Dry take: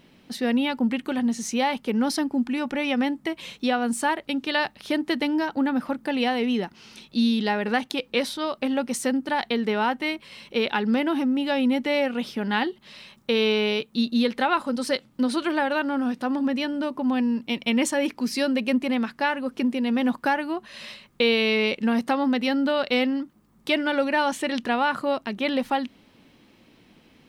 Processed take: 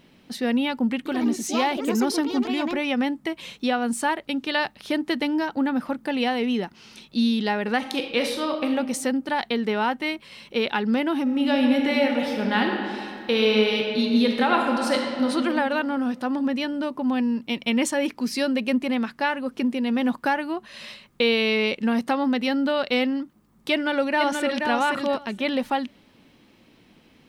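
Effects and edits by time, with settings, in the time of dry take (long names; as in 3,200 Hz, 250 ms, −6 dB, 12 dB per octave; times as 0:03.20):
0:00.97–0:03.21: delay with pitch and tempo change per echo 84 ms, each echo +4 semitones, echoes 2, each echo −6 dB
0:07.77–0:08.73: thrown reverb, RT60 0.93 s, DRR 3.5 dB
0:11.22–0:15.30: thrown reverb, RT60 2.4 s, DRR 1 dB
0:23.72–0:24.68: delay throw 480 ms, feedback 15%, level −4.5 dB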